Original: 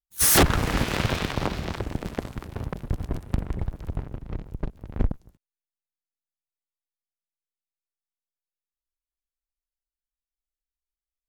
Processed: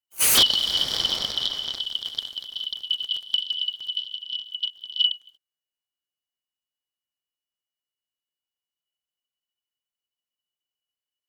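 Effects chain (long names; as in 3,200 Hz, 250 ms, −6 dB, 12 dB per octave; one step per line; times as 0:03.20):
band-splitting scrambler in four parts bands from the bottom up 3412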